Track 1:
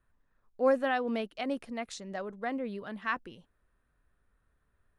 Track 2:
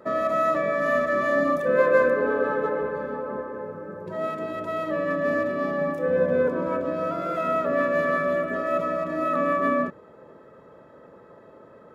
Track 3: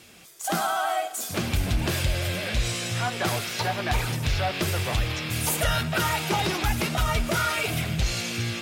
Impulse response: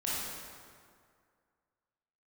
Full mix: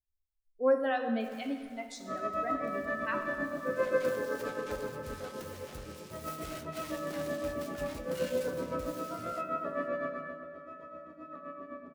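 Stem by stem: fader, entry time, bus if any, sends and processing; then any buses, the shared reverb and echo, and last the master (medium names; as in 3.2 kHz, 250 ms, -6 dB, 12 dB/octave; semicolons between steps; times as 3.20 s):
+1.5 dB, 0.00 s, send -9.5 dB, no echo send, expander on every frequency bin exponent 2
10.01 s -6.5 dB -> 10.39 s -17.5 dB, 2.00 s, send -8.5 dB, no echo send, low-pass 3.7 kHz 6 dB/octave; tremolo 7.7 Hz, depth 86%
-16.5 dB, 0.80 s, no send, echo send -19 dB, self-modulated delay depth 0.53 ms; auto duck -13 dB, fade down 1.70 s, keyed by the first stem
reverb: on, RT60 2.1 s, pre-delay 18 ms
echo: delay 473 ms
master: peaking EQ 280 Hz +3 dB 0.36 oct; feedback comb 76 Hz, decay 0.18 s, harmonics all, mix 70%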